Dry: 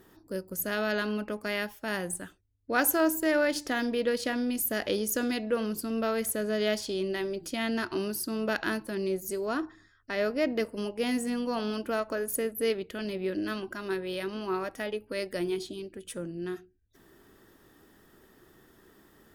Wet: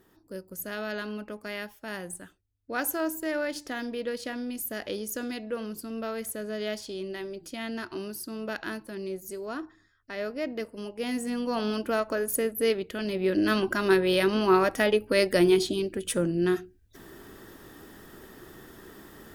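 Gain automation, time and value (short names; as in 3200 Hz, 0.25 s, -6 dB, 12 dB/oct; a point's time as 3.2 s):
10.79 s -4.5 dB
11.66 s +3 dB
13.05 s +3 dB
13.65 s +10.5 dB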